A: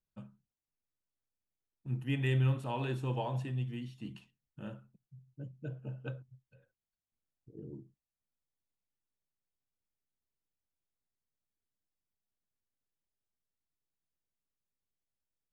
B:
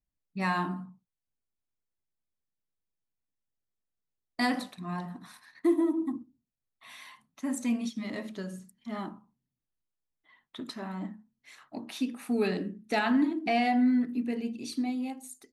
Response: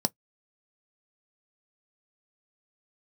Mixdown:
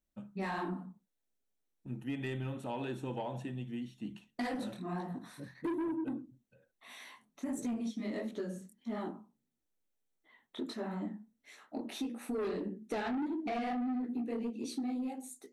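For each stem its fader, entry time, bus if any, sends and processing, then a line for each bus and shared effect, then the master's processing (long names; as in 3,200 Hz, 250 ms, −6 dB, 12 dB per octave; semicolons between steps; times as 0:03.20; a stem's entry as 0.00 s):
−1.5 dB, 0.00 s, send −16 dB, no processing
0.0 dB, 0.00 s, send −20 dB, parametric band 440 Hz +8.5 dB 0.9 octaves; micro pitch shift up and down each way 54 cents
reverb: on, pre-delay 3 ms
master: soft clipping −24.5 dBFS, distortion −8 dB; downward compressor, threshold −34 dBFS, peak gain reduction 8 dB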